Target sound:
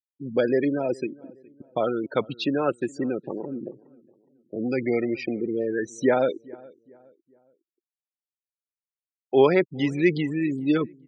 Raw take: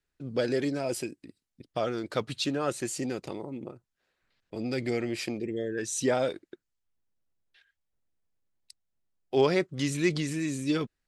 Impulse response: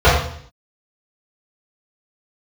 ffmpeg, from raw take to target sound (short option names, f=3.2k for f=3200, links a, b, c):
-filter_complex "[0:a]bandreject=f=1.2k:w=20,afftfilt=real='re*gte(hypot(re,im),0.0251)':imag='im*gte(hypot(re,im),0.0251)':win_size=1024:overlap=0.75,highpass=170,lowpass=2.8k,equalizer=f=660:t=o:w=0.25:g=-2.5,asplit=2[a][b];[b]adelay=416,lowpass=f=1.4k:p=1,volume=-23dB,asplit=2[c][d];[d]adelay=416,lowpass=f=1.4k:p=1,volume=0.4,asplit=2[e][f];[f]adelay=416,lowpass=f=1.4k:p=1,volume=0.4[g];[a][c][e][g]amix=inputs=4:normalize=0,volume=6.5dB"